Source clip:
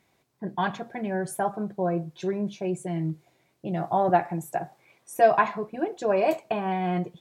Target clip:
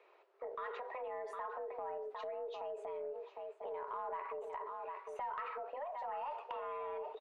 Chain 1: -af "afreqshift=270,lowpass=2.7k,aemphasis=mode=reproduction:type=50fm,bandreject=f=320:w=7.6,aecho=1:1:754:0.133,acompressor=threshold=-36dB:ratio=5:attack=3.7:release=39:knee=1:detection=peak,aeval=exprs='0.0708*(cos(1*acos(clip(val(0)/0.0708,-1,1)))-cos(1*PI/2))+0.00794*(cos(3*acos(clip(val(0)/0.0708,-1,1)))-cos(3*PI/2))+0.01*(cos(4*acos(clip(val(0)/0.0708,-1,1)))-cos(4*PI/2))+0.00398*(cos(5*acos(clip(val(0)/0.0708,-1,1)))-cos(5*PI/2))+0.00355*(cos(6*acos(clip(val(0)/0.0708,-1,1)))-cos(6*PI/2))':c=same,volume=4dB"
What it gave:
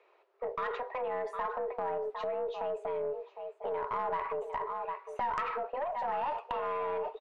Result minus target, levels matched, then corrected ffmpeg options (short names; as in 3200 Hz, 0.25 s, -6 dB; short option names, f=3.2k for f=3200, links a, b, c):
compressor: peak gain reduction -9 dB
-af "afreqshift=270,lowpass=2.7k,aemphasis=mode=reproduction:type=50fm,bandreject=f=320:w=7.6,aecho=1:1:754:0.133,acompressor=threshold=-47dB:ratio=5:attack=3.7:release=39:knee=1:detection=peak,aeval=exprs='0.0708*(cos(1*acos(clip(val(0)/0.0708,-1,1)))-cos(1*PI/2))+0.00794*(cos(3*acos(clip(val(0)/0.0708,-1,1)))-cos(3*PI/2))+0.01*(cos(4*acos(clip(val(0)/0.0708,-1,1)))-cos(4*PI/2))+0.00398*(cos(5*acos(clip(val(0)/0.0708,-1,1)))-cos(5*PI/2))+0.00355*(cos(6*acos(clip(val(0)/0.0708,-1,1)))-cos(6*PI/2))':c=same,volume=4dB"